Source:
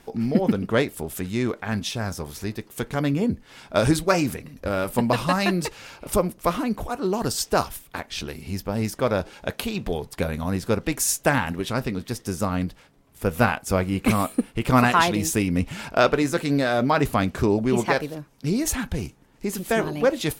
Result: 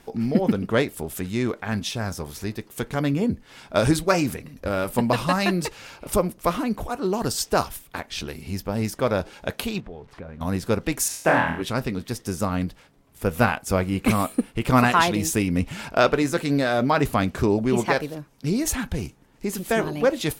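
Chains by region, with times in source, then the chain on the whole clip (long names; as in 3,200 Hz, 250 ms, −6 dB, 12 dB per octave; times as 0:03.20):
0:09.80–0:10.41: spike at every zero crossing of −25.5 dBFS + low-pass filter 1,700 Hz + downward compressor 2 to 1, threshold −44 dBFS
0:11.08–0:11.62: high-pass filter 180 Hz 6 dB per octave + bass and treble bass −1 dB, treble −13 dB + flutter between parallel walls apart 4.2 metres, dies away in 0.5 s
whole clip: no processing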